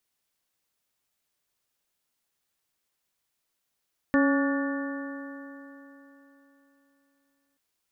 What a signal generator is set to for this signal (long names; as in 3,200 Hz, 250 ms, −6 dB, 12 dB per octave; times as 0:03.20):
stiff-string partials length 3.43 s, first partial 276 Hz, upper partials −7/−16/−11.5/−13/−8 dB, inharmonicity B 0.0039, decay 3.53 s, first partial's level −19 dB